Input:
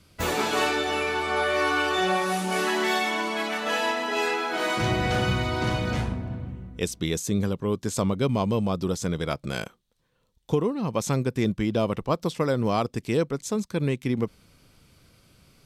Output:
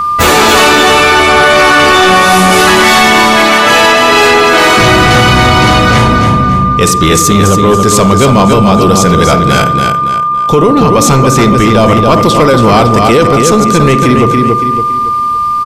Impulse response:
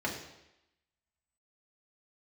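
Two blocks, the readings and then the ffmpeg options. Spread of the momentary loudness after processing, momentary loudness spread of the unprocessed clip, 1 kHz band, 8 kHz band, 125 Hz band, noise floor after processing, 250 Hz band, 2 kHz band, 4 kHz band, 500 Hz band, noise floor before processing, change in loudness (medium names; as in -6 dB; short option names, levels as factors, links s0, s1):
5 LU, 6 LU, +23.0 dB, +22.5 dB, +18.5 dB, -11 dBFS, +19.0 dB, +21.0 dB, +21.5 dB, +19.0 dB, -66 dBFS, +20.0 dB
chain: -filter_complex "[0:a]aecho=1:1:281|562|843|1124:0.447|0.161|0.0579|0.0208,aeval=exprs='val(0)+0.0224*sin(2*PI*1200*n/s)':c=same,asplit=2[s0][s1];[1:a]atrim=start_sample=2205,adelay=46[s2];[s1][s2]afir=irnorm=-1:irlink=0,volume=0.106[s3];[s0][s3]amix=inputs=2:normalize=0,apsyclip=17.8,volume=0.841"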